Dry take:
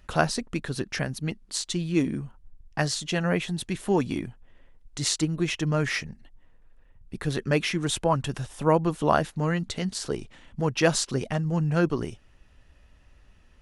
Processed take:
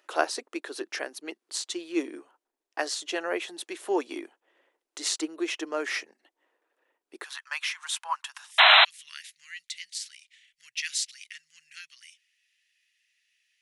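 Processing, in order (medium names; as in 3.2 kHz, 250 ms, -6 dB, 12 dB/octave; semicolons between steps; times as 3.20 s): elliptic high-pass 330 Hz, stop band 60 dB, from 7.23 s 940 Hz, from 8.50 s 2 kHz; 8.58–8.85 s: painted sound noise 600–4100 Hz -14 dBFS; trim -1.5 dB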